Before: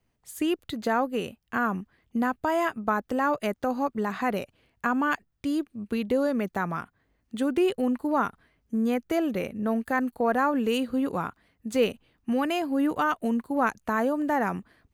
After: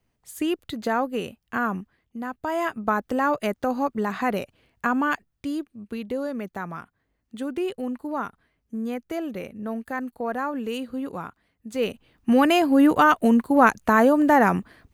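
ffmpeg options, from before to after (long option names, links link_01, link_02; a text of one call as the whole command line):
ffmpeg -i in.wav -af "volume=24.5dB,afade=type=out:start_time=1.77:duration=0.39:silence=0.334965,afade=type=in:start_time=2.16:duration=0.71:silence=0.281838,afade=type=out:start_time=4.96:duration=0.83:silence=0.473151,afade=type=in:start_time=11.76:duration=0.64:silence=0.237137" out.wav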